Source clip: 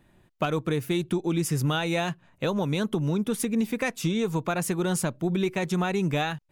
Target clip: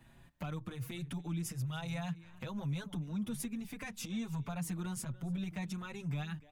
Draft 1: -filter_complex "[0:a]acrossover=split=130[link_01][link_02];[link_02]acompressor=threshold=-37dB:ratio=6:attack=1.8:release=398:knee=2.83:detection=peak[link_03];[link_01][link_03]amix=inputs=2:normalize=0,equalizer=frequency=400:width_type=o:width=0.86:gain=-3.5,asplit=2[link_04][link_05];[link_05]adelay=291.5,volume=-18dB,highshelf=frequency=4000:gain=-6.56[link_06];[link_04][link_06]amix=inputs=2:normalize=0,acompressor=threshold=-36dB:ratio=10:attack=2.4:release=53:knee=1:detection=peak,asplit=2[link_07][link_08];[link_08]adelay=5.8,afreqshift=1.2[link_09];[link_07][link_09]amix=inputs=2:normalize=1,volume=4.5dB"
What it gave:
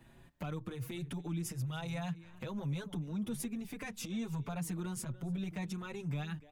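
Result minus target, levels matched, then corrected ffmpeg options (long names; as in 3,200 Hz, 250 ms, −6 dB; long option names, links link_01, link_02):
500 Hz band +3.0 dB
-filter_complex "[0:a]acrossover=split=130[link_01][link_02];[link_02]acompressor=threshold=-37dB:ratio=6:attack=1.8:release=398:knee=2.83:detection=peak[link_03];[link_01][link_03]amix=inputs=2:normalize=0,equalizer=frequency=400:width_type=o:width=0.86:gain=-10,asplit=2[link_04][link_05];[link_05]adelay=291.5,volume=-18dB,highshelf=frequency=4000:gain=-6.56[link_06];[link_04][link_06]amix=inputs=2:normalize=0,acompressor=threshold=-36dB:ratio=10:attack=2.4:release=53:knee=1:detection=peak,asplit=2[link_07][link_08];[link_08]adelay=5.8,afreqshift=1.2[link_09];[link_07][link_09]amix=inputs=2:normalize=1,volume=4.5dB"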